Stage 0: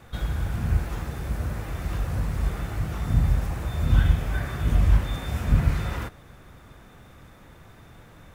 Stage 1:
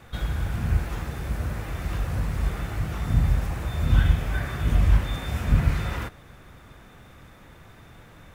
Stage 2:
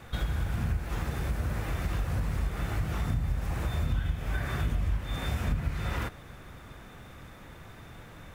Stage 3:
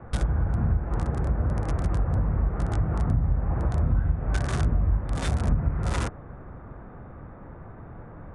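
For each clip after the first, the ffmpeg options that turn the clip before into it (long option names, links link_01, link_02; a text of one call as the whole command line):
ffmpeg -i in.wav -af "equalizer=frequency=2400:width_type=o:width=1.6:gain=2.5" out.wav
ffmpeg -i in.wav -af "acompressor=threshold=-27dB:ratio=6,volume=1dB" out.wav
ffmpeg -i in.wav -filter_complex "[0:a]acrossover=split=300|1400[link_01][link_02][link_03];[link_03]acrusher=bits=5:mix=0:aa=0.000001[link_04];[link_01][link_02][link_04]amix=inputs=3:normalize=0,aresample=22050,aresample=44100,volume=6dB" out.wav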